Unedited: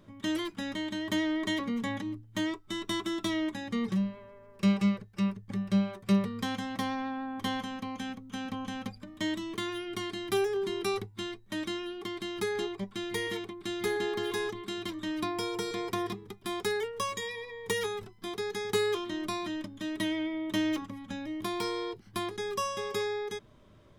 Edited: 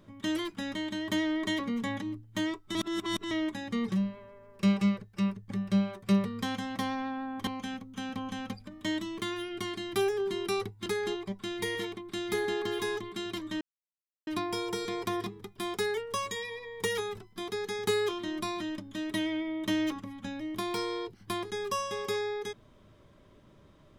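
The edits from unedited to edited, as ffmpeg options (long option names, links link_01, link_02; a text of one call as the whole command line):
ffmpeg -i in.wav -filter_complex "[0:a]asplit=6[link_01][link_02][link_03][link_04][link_05][link_06];[link_01]atrim=end=2.752[link_07];[link_02]atrim=start=2.748:end=3.312,asetpts=PTS-STARTPTS,areverse[link_08];[link_03]atrim=start=3.308:end=7.472[link_09];[link_04]atrim=start=7.828:end=11.222[link_10];[link_05]atrim=start=12.378:end=15.13,asetpts=PTS-STARTPTS,afade=type=out:start_time=2.748:duration=0.004:curve=hsin,apad=pad_dur=0.66[link_11];[link_06]atrim=start=15.13,asetpts=PTS-STARTPTS,afade=type=in:duration=0.004:curve=hsin[link_12];[link_07][link_08]acrossfade=duration=0.004:curve1=hsin:curve2=hsin[link_13];[link_13][link_09]acrossfade=duration=0.004:curve1=hsin:curve2=hsin[link_14];[link_14][link_10]acrossfade=duration=0.004:curve1=hsin:curve2=hsin[link_15];[link_11][link_12]concat=n=2:v=0:a=1[link_16];[link_15][link_16]acrossfade=duration=0.004:curve1=hsin:curve2=hsin" out.wav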